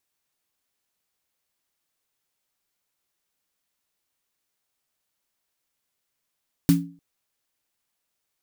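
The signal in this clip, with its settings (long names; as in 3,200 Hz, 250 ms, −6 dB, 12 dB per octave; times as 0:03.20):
synth snare length 0.30 s, tones 170 Hz, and 280 Hz, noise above 990 Hz, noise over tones −12 dB, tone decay 0.40 s, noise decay 0.20 s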